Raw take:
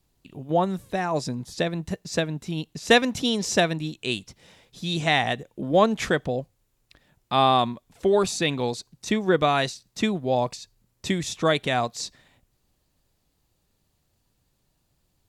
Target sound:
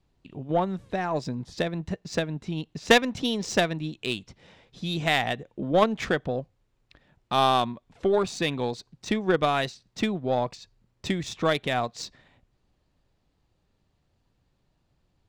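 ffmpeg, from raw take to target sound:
-filter_complex "[0:a]asplit=2[a][b];[b]acompressor=threshold=-31dB:ratio=5,volume=1dB[c];[a][c]amix=inputs=2:normalize=0,aeval=exprs='0.794*(cos(1*acos(clip(val(0)/0.794,-1,1)))-cos(1*PI/2))+0.0631*(cos(2*acos(clip(val(0)/0.794,-1,1)))-cos(2*PI/2))+0.141*(cos(3*acos(clip(val(0)/0.794,-1,1)))-cos(3*PI/2))':c=same,adynamicsmooth=sensitivity=3:basefreq=4.3k,volume=1dB"

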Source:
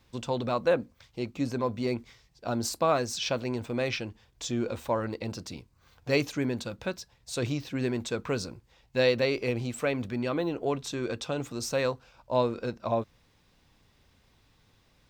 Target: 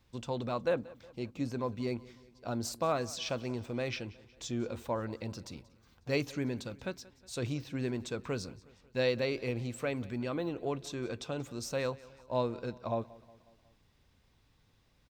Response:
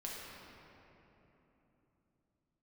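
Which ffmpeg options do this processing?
-af "lowshelf=f=210:g=3.5,aecho=1:1:182|364|546|728:0.0891|0.049|0.027|0.0148,volume=-6.5dB"

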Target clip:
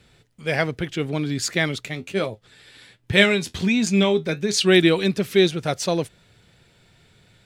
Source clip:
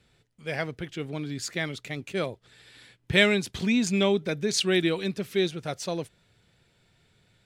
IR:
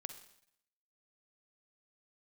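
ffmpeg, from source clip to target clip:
-filter_complex "[0:a]asplit=3[a][b][c];[a]afade=t=out:st=1.85:d=0.02[d];[b]flanger=delay=9.2:depth=3.3:regen=57:speed=1.3:shape=sinusoidal,afade=t=in:st=1.85:d=0.02,afade=t=out:st=4.64:d=0.02[e];[c]afade=t=in:st=4.64:d=0.02[f];[d][e][f]amix=inputs=3:normalize=0,volume=8.5dB"

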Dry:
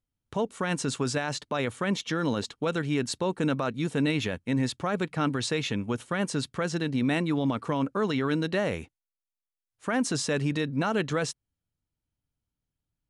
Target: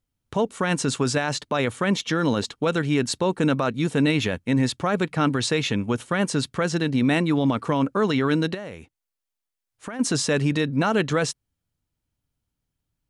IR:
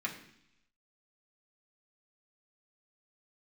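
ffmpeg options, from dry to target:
-filter_complex "[0:a]asplit=3[a][b][c];[a]afade=t=out:st=8.53:d=0.02[d];[b]acompressor=threshold=-40dB:ratio=4,afade=t=in:st=8.53:d=0.02,afade=t=out:st=9.99:d=0.02[e];[c]afade=t=in:st=9.99:d=0.02[f];[d][e][f]amix=inputs=3:normalize=0,volume=5.5dB"

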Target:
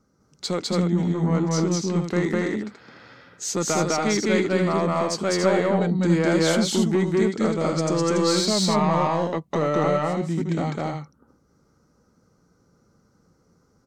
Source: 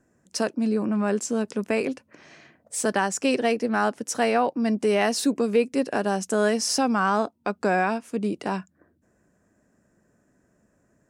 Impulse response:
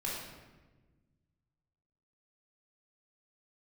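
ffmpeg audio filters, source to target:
-af "asoftclip=type=tanh:threshold=-14.5dB,aecho=1:1:163.3|227.4:1|0.562,asetrate=35280,aresample=44100"

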